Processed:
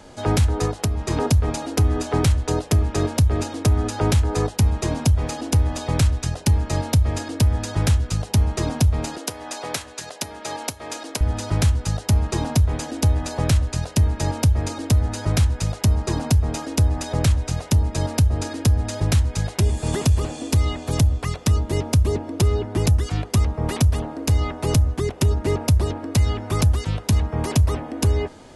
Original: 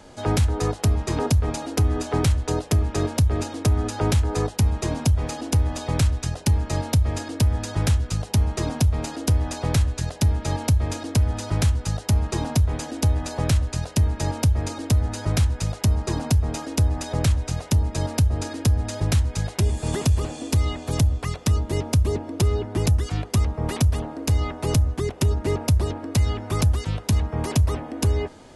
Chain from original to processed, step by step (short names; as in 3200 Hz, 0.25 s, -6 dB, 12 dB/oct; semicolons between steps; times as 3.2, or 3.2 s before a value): 0.65–1.11 compressor 5:1, threshold -21 dBFS, peak gain reduction 6.5 dB; 9.17–11.21 Bessel high-pass 510 Hz, order 2; gain +2 dB